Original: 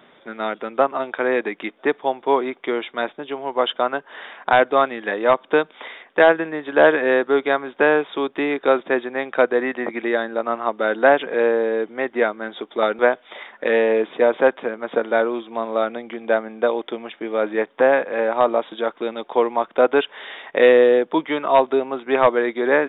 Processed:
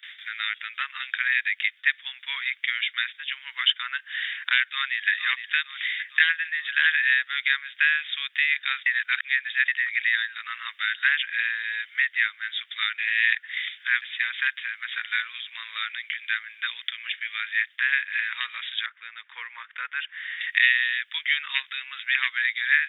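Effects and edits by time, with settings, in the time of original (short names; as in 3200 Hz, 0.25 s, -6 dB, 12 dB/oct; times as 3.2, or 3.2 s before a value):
4.61–5.1 echo throw 0.46 s, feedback 50%, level -9.5 dB
8.86–9.68 reverse
12.98–14.02 reverse
18.86–20.41 LPF 1300 Hz
whole clip: gate with hold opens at -42 dBFS; elliptic high-pass 1800 Hz, stop band 60 dB; three-band squash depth 40%; gain +7.5 dB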